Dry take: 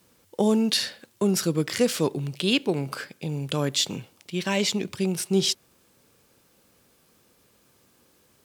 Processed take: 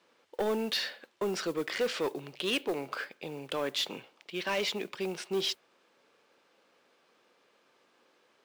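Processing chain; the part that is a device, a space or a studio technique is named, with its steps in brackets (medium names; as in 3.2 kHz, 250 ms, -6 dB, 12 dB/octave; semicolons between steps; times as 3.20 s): carbon microphone (band-pass 440–3400 Hz; saturation -24 dBFS, distortion -12 dB; modulation noise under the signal 24 dB)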